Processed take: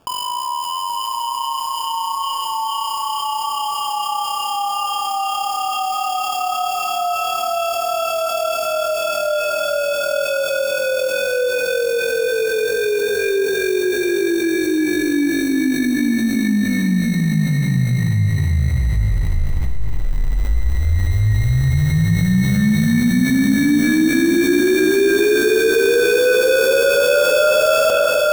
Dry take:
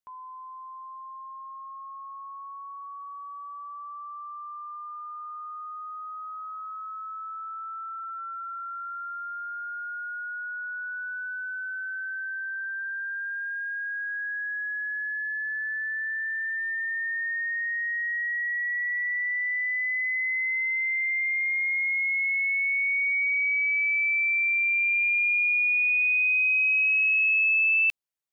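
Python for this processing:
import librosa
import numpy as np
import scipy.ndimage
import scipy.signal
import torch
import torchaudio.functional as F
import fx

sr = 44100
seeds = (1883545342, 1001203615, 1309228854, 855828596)

y = fx.highpass(x, sr, hz=980.0, slope=6)
y = fx.peak_eq(y, sr, hz=2200.0, db=12.0, octaves=1.3)
y = fx.sample_hold(y, sr, seeds[0], rate_hz=2000.0, jitter_pct=0)
y = fx.echo_feedback(y, sr, ms=829, feedback_pct=32, wet_db=-5.5)
y = fx.rev_spring(y, sr, rt60_s=1.6, pass_ms=(38, 48), chirp_ms=75, drr_db=0.5)
y = fx.env_flatten(y, sr, amount_pct=70)
y = y * 10.0 ** (-7.5 / 20.0)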